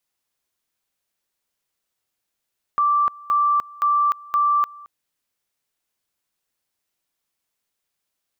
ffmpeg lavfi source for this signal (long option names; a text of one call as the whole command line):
ffmpeg -f lavfi -i "aevalsrc='pow(10,(-15-23*gte(mod(t,0.52),0.3))/20)*sin(2*PI*1170*t)':duration=2.08:sample_rate=44100" out.wav